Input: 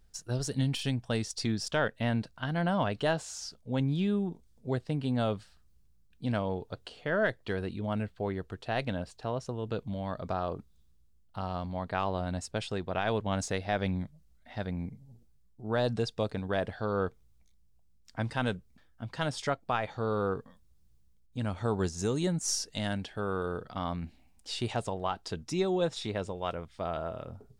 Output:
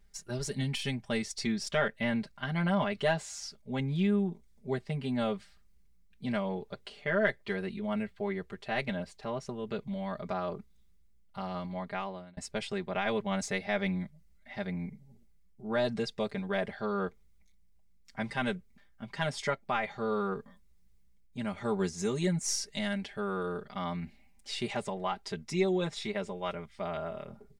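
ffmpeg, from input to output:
ffmpeg -i in.wav -filter_complex "[0:a]asplit=2[link_01][link_02];[link_01]atrim=end=12.37,asetpts=PTS-STARTPTS,afade=type=out:start_time=11.51:duration=0.86:curve=qsin[link_03];[link_02]atrim=start=12.37,asetpts=PTS-STARTPTS,afade=type=in:duration=0.004:curve=hsin[link_04];[link_03][link_04]concat=n=2:v=0:a=1,equalizer=frequency=2100:width_type=o:width=0.33:gain=10,aecho=1:1:5:0.94,volume=-4dB" out.wav

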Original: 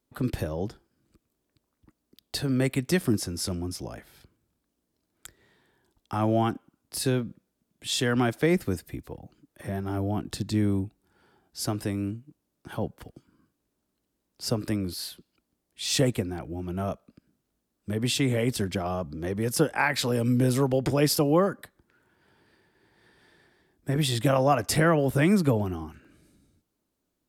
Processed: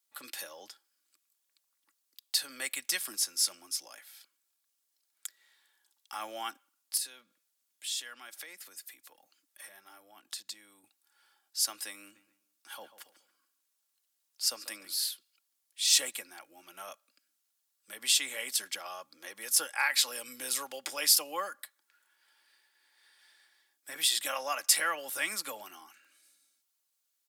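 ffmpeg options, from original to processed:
ffmpeg -i in.wav -filter_complex "[0:a]asettb=1/sr,asplit=3[link_01][link_02][link_03];[link_01]atrim=end=6.974[link_04];[link_02]atrim=start=6.97:end=10.84,asetpts=PTS-STARTPTS,afade=type=in:duration=0.004:curve=qsin,afade=type=out:start_time=3.866:duration=0.004:curve=qsin,acompressor=threshold=-39dB:ratio=2.5:attack=3.2:release=140:knee=1:detection=peak[link_05];[link_03]atrim=start=10.836[link_06];[link_04][link_05]acrossfade=duration=0.004:curve1=hsin:curve2=qsin[link_07];[link_07][link_06]acrossfade=duration=0.004:curve1=qsin:curve2=hsin,asplit=3[link_08][link_09][link_10];[link_08]afade=type=out:start_time=12.14:duration=0.02[link_11];[link_09]asplit=2[link_12][link_13];[link_13]adelay=141,lowpass=frequency=3300:poles=1,volume=-14dB,asplit=2[link_14][link_15];[link_15]adelay=141,lowpass=frequency=3300:poles=1,volume=0.36,asplit=2[link_16][link_17];[link_17]adelay=141,lowpass=frequency=3300:poles=1,volume=0.36[link_18];[link_12][link_14][link_16][link_18]amix=inputs=4:normalize=0,afade=type=in:start_time=12.14:duration=0.02,afade=type=out:start_time=14.99:duration=0.02[link_19];[link_10]afade=type=in:start_time=14.99:duration=0.02[link_20];[link_11][link_19][link_20]amix=inputs=3:normalize=0,highpass=1100,highshelf=frequency=2800:gain=12,aecho=1:1:3.6:0.41,volume=-6dB" out.wav

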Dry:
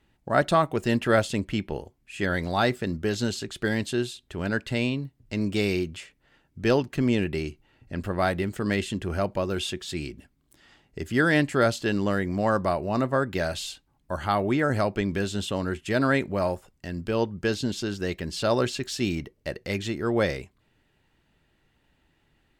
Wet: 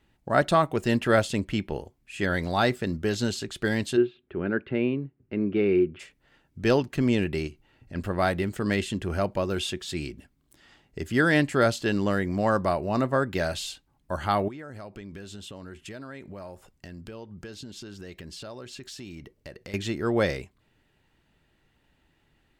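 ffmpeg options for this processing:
ffmpeg -i in.wav -filter_complex "[0:a]asplit=3[link_01][link_02][link_03];[link_01]afade=type=out:start_time=3.96:duration=0.02[link_04];[link_02]highpass=100,equalizer=frequency=110:width_type=q:width=4:gain=-6,equalizer=frequency=370:width_type=q:width=4:gain=8,equalizer=frequency=660:width_type=q:width=4:gain=-5,equalizer=frequency=960:width_type=q:width=4:gain=-6,equalizer=frequency=1900:width_type=q:width=4:gain=-5,lowpass=frequency=2300:width=0.5412,lowpass=frequency=2300:width=1.3066,afade=type=in:start_time=3.96:duration=0.02,afade=type=out:start_time=5.99:duration=0.02[link_05];[link_03]afade=type=in:start_time=5.99:duration=0.02[link_06];[link_04][link_05][link_06]amix=inputs=3:normalize=0,asettb=1/sr,asplit=3[link_07][link_08][link_09];[link_07]atrim=end=7.474[link_10];[link_08]atrim=start=7.47:end=7.95,asetpts=PTS-STARTPTS,afade=type=in:duration=0.004:curve=qsin,afade=type=out:start_time=0.476:duration=0.004:curve=qsin,acompressor=threshold=-40dB:ratio=2:attack=3.2:release=140:knee=1:detection=peak[link_11];[link_09]atrim=start=7.946[link_12];[link_10][link_11]acrossfade=duration=0.004:curve1=hsin:curve2=qsin[link_13];[link_13][link_12]acrossfade=duration=0.004:curve1=qsin:curve2=hsin,asettb=1/sr,asplit=3[link_14][link_15][link_16];[link_14]atrim=end=14.484[link_17];[link_15]atrim=start=14.48:end=19.74,asetpts=PTS-STARTPTS,afade=type=in:duration=0.004:curve=qsin,afade=type=out:start_time=5.256:duration=0.004:curve=qsin,acompressor=threshold=-39dB:ratio=5:attack=3.2:release=140:knee=1:detection=peak[link_18];[link_16]atrim=start=19.736[link_19];[link_17][link_18]acrossfade=duration=0.004:curve1=hsin:curve2=qsin[link_20];[link_20][link_19]acrossfade=duration=0.004:curve1=qsin:curve2=hsin" out.wav

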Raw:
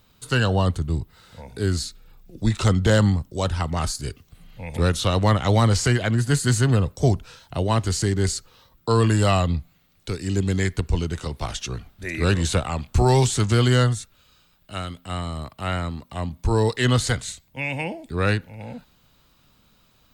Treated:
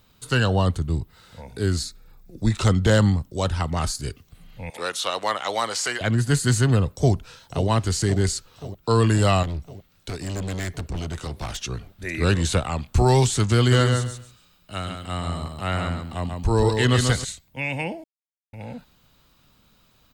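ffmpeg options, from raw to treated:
ffmpeg -i in.wav -filter_complex "[0:a]asettb=1/sr,asplit=3[link_01][link_02][link_03];[link_01]atrim=end=1.834[link_04];[link_02]atrim=start=1.83:end=2.53,asetpts=PTS-STARTPTS,afade=type=in:duration=0.004:curve=qsin,afade=type=out:start_time=0.696:duration=0.004:curve=qsin,equalizer=frequency=3000:width_type=o:width=0.32:gain=-9.5[link_05];[link_03]atrim=start=2.526[link_06];[link_04][link_05]acrossfade=duration=0.004:curve1=hsin:curve2=qsin[link_07];[link_07][link_06]acrossfade=duration=0.004:curve1=qsin:curve2=hsin,asettb=1/sr,asplit=3[link_08][link_09][link_10];[link_08]atrim=end=4.704[link_11];[link_09]atrim=start=4.7:end=6.01,asetpts=PTS-STARTPTS,afade=type=in:duration=0.004:curve=qsin,afade=type=out:start_time=1.306:duration=0.004:curve=qsin,highpass=620[link_12];[link_10]atrim=start=6.006[link_13];[link_11][link_12]acrossfade=duration=0.004:curve1=hsin:curve2=qsin[link_14];[link_14][link_13]acrossfade=duration=0.004:curve1=qsin:curve2=hsin,asplit=2[link_15][link_16];[link_16]afade=type=in:start_time=6.9:duration=0.01,afade=type=out:start_time=7.68:duration=0.01,aecho=0:1:530|1060|1590|2120|2650|3180|3710|4240|4770:0.237137|0.165996|0.116197|0.0813381|0.0569367|0.0398557|0.027899|0.0195293|0.0136705[link_17];[link_15][link_17]amix=inputs=2:normalize=0,asettb=1/sr,asplit=3[link_18][link_19][link_20];[link_18]atrim=end=9.434[link_21];[link_19]atrim=start=9.43:end=11.63,asetpts=PTS-STARTPTS,afade=type=in:duration=0.004:curve=qsin,afade=type=out:start_time=2.196:duration=0.004:curve=qsin,asoftclip=type=hard:threshold=-26dB[link_22];[link_20]atrim=start=11.626[link_23];[link_21][link_22]acrossfade=duration=0.004:curve1=hsin:curve2=qsin[link_24];[link_24][link_23]acrossfade=duration=0.004:curve1=qsin:curve2=hsin,asplit=3[link_25][link_26][link_27];[link_25]afade=type=out:start_time=13.71:duration=0.02[link_28];[link_26]aecho=1:1:139|278|417:0.562|0.118|0.0248,afade=type=in:start_time=13.71:duration=0.02,afade=type=out:start_time=17.23:duration=0.02[link_29];[link_27]afade=type=in:start_time=17.23:duration=0.02[link_30];[link_28][link_29][link_30]amix=inputs=3:normalize=0,asplit=3[link_31][link_32][link_33];[link_31]atrim=end=18.04,asetpts=PTS-STARTPTS,afade=type=out:start_time=18.036:duration=0.004:curve=hsin[link_34];[link_32]atrim=start=18.04:end=18.53,asetpts=PTS-STARTPTS,volume=0[link_35];[link_33]atrim=start=18.53,asetpts=PTS-STARTPTS,afade=type=in:duration=0.004:curve=hsin[link_36];[link_34][link_35][link_36]concat=n=3:v=0:a=1" out.wav

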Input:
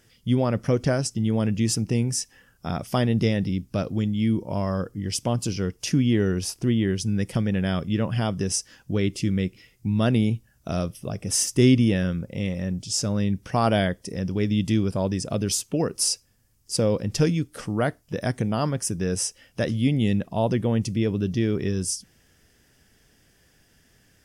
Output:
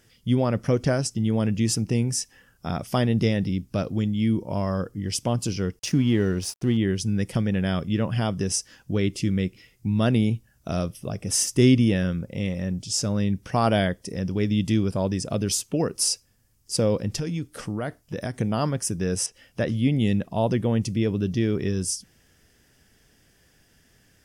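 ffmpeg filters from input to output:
ffmpeg -i in.wav -filter_complex "[0:a]asettb=1/sr,asplit=3[link_01][link_02][link_03];[link_01]atrim=end=5.794[link_04];[link_02]atrim=start=5.79:end=6.77,asetpts=PTS-STARTPTS,afade=type=in:duration=0.004:curve=qsin,afade=type=out:start_time=0.976:duration=0.004:curve=qsin,aeval=exprs='sgn(val(0))*max(abs(val(0))-0.00501,0)':channel_layout=same[link_05];[link_03]atrim=start=6.766[link_06];[link_04][link_05]acrossfade=duration=0.004:curve1=hsin:curve2=qsin[link_07];[link_07][link_06]acrossfade=duration=0.004:curve1=qsin:curve2=hsin,asettb=1/sr,asplit=3[link_08][link_09][link_10];[link_08]atrim=end=17.154[link_11];[link_09]atrim=start=17.15:end=18.38,asetpts=PTS-STARTPTS,afade=type=in:duration=0.004:curve=qsin,afade=type=out:start_time=1.226:duration=0.004:curve=qsin,acompressor=threshold=-24dB:ratio=10:attack=3.2:release=140:knee=1:detection=peak[link_12];[link_10]atrim=start=18.376[link_13];[link_11][link_12]acrossfade=duration=0.004:curve1=hsin:curve2=qsin[link_14];[link_14][link_13]acrossfade=duration=0.004:curve1=qsin:curve2=hsin,asettb=1/sr,asplit=3[link_15][link_16][link_17];[link_15]atrim=end=19.264[link_18];[link_16]atrim=start=19.26:end=19.98,asetpts=PTS-STARTPTS,afade=type=in:duration=0.004:curve=qsin,afade=type=out:start_time=0.716:duration=0.004:curve=qsin,acrossover=split=3500[link_19][link_20];[link_20]acompressor=threshold=-47dB:ratio=4:attack=1:release=60[link_21];[link_19][link_21]amix=inputs=2:normalize=0[link_22];[link_17]atrim=start=19.976[link_23];[link_18][link_22]acrossfade=duration=0.004:curve1=hsin:curve2=qsin[link_24];[link_24][link_23]acrossfade=duration=0.004:curve1=qsin:curve2=hsin" out.wav

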